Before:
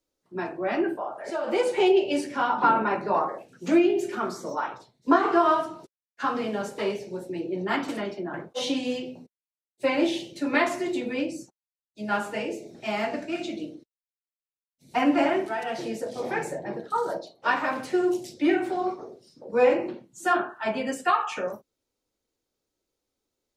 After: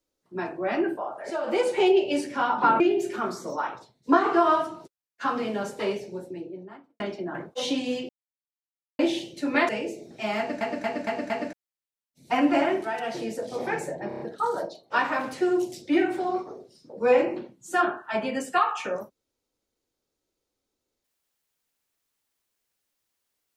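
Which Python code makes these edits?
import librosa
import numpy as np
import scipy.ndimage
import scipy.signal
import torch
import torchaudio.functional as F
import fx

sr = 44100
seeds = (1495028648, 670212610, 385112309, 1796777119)

y = fx.studio_fade_out(x, sr, start_s=6.89, length_s=1.1)
y = fx.edit(y, sr, fx.cut(start_s=2.8, length_s=0.99),
    fx.silence(start_s=9.08, length_s=0.9),
    fx.cut(start_s=10.68, length_s=1.65),
    fx.stutter_over(start_s=13.02, slice_s=0.23, count=5),
    fx.stutter(start_s=16.72, slice_s=0.03, count=5), tone=tone)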